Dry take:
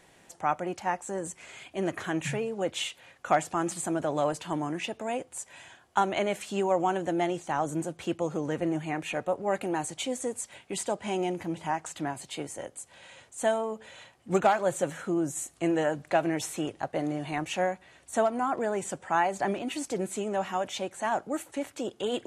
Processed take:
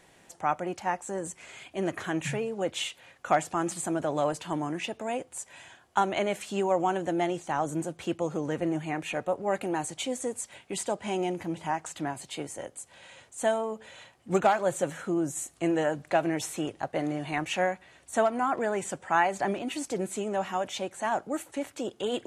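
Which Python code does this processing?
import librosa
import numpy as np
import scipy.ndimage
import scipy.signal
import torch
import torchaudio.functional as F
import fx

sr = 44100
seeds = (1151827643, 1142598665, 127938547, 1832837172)

y = fx.dynamic_eq(x, sr, hz=2000.0, q=0.89, threshold_db=-43.0, ratio=4.0, max_db=4, at=(16.92, 19.42))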